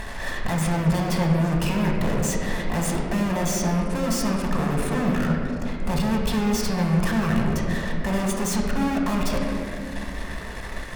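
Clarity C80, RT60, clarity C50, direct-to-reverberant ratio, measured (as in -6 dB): 3.5 dB, 2.5 s, 2.0 dB, -1.0 dB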